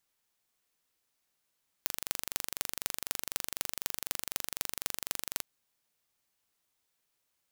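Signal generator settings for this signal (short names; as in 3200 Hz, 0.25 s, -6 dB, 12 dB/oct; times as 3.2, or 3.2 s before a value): pulse train 24/s, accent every 6, -1.5 dBFS 3.55 s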